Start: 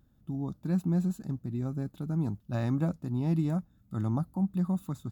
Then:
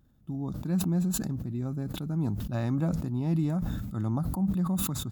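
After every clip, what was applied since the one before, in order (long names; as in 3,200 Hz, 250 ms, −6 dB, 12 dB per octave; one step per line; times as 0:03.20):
level that may fall only so fast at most 29 dB per second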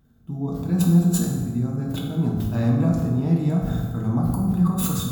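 convolution reverb RT60 1.5 s, pre-delay 3 ms, DRR −3 dB
level +2 dB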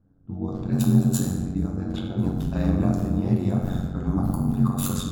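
low-pass that shuts in the quiet parts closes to 1,000 Hz, open at −18.5 dBFS
ring modulation 46 Hz
level +1 dB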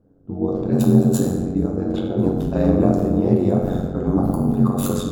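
parametric band 460 Hz +14.5 dB 1.5 octaves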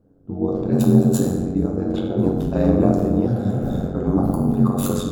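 healed spectral selection 0:03.29–0:03.78, 200–3,300 Hz after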